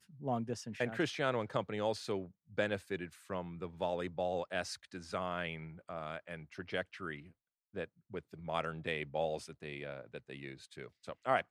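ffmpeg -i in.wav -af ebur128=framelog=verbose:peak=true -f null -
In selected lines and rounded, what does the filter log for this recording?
Integrated loudness:
  I:         -39.5 LUFS
  Threshold: -49.7 LUFS
Loudness range:
  LRA:         5.4 LU
  Threshold: -60.1 LUFS
  LRA low:   -43.0 LUFS
  LRA high:  -37.6 LUFS
True peak:
  Peak:      -18.1 dBFS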